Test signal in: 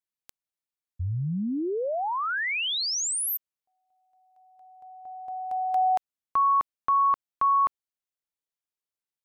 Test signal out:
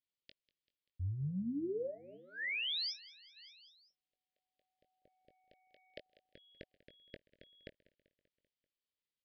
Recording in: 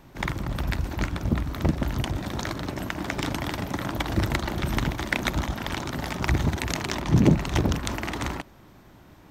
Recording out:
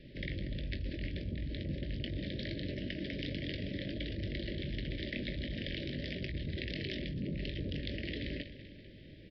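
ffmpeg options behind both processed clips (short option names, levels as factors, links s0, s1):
-filter_complex "[0:a]asplit=2[s0][s1];[s1]aecho=0:1:194|388|582|776|970:0.0891|0.0526|0.031|0.0183|0.0108[s2];[s0][s2]amix=inputs=2:normalize=0,acontrast=79,equalizer=f=630:t=o:w=0.33:g=7,equalizer=f=1000:t=o:w=0.33:g=-10,equalizer=f=3150:t=o:w=0.33:g=5,areverse,acompressor=threshold=0.0355:ratio=16:attack=17:release=46:knee=6:detection=peak,areverse,asuperstop=centerf=1000:order=12:qfactor=0.85,asplit=2[s3][s4];[s4]adelay=21,volume=0.355[s5];[s3][s5]amix=inputs=2:normalize=0,aresample=11025,aresample=44100,volume=0.355"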